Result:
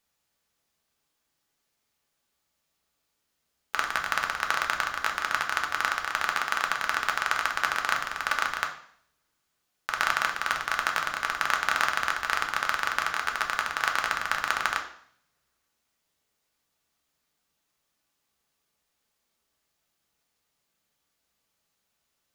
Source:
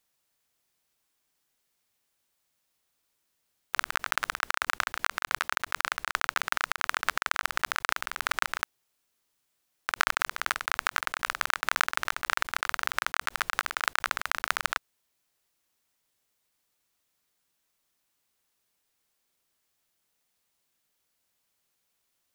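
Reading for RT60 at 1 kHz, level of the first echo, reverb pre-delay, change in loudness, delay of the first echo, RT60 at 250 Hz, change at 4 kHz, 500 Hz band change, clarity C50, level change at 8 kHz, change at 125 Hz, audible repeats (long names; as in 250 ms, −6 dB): 0.60 s, no echo audible, 3 ms, +2.0 dB, no echo audible, 0.75 s, +1.0 dB, +3.0 dB, 9.0 dB, −0.5 dB, +4.0 dB, no echo audible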